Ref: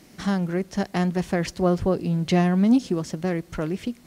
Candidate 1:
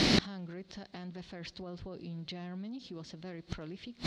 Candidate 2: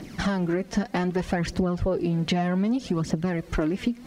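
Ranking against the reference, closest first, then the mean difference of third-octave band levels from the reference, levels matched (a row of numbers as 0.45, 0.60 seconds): 2, 1; 4.0, 7.5 decibels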